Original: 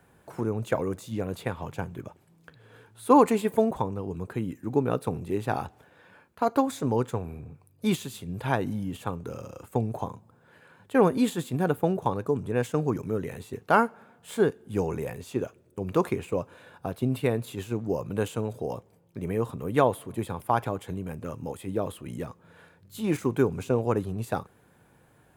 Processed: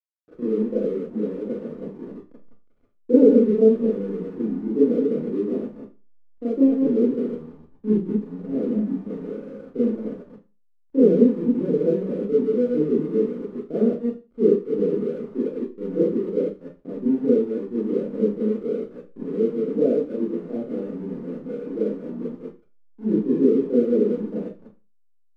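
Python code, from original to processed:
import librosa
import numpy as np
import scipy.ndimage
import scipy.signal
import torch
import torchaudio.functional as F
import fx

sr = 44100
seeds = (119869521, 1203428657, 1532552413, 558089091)

y = fx.reverse_delay(x, sr, ms=129, wet_db=-4)
y = scipy.signal.sosfilt(scipy.signal.ellip(3, 1.0, 40, [180.0, 490.0], 'bandpass', fs=sr, output='sos'), y)
y = fx.backlash(y, sr, play_db=-45.0)
y = fx.rev_schroeder(y, sr, rt60_s=0.3, comb_ms=26, drr_db=-9.5)
y = F.gain(torch.from_numpy(y), -3.0).numpy()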